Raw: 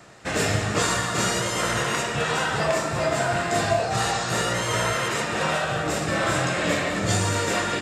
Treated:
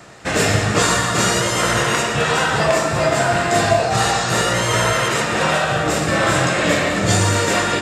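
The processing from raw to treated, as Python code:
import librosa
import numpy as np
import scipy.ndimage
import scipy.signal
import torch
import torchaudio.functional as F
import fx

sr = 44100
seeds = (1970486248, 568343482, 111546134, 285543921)

y = x + 10.0 ** (-13.5 / 20.0) * np.pad(x, (int(118 * sr / 1000.0), 0))[:len(x)]
y = y * librosa.db_to_amplitude(6.5)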